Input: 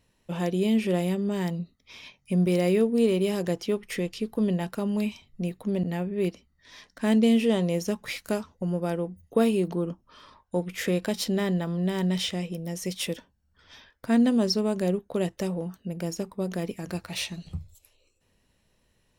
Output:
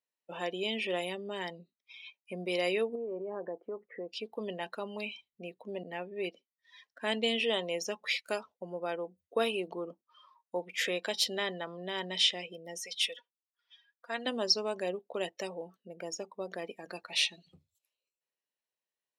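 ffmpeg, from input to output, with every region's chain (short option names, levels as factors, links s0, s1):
-filter_complex "[0:a]asettb=1/sr,asplit=3[s0][s1][s2];[s0]atrim=end=2.954[s3];[s1]atrim=start=2.95:end=4.09,asetpts=PTS-STARTPTS,afade=t=in:d=0.004:c=qsin,afade=t=out:st=1.136:d=0.004:c=qsin,equalizer=f=140:t=o:w=0.73:g=-4.5,acompressor=threshold=0.0631:ratio=12:attack=3.2:release=140:knee=1:detection=peak,lowpass=f=1500:w=0.5412,lowpass=f=1500:w=1.3066[s4];[s2]atrim=start=4.086[s5];[s3][s4]acrossfade=d=0.004:c1=hsin:c2=qsin[s6];[s6][s5]acrossfade=d=0.004:c1=qsin:c2=hsin,asettb=1/sr,asplit=3[s7][s8][s9];[s7]atrim=end=12.824[s10];[s8]atrim=start=12.82:end=14.26,asetpts=PTS-STARTPTS,afade=t=in:d=0.004:c=qsin,afade=t=out:st=1.436:d=0.004:c=qsin,highpass=f=1300:p=1,highshelf=f=5300:g=-6.5,aecho=1:1:4.2:0.62,atrim=end_sample=63504[s11];[s9]atrim=start=14.256[s12];[s10][s11]acrossfade=d=0.004:c1=hsin:c2=qsin[s13];[s13][s12]acrossfade=d=0.004:c1=qsin:c2=hsin,afftdn=nr=21:nf=-43,highpass=520,adynamicequalizer=threshold=0.00282:dfrequency=3300:dqfactor=0.94:tfrequency=3300:tqfactor=0.94:attack=5:release=100:ratio=0.375:range=4:mode=boostabove:tftype=bell,volume=0.75"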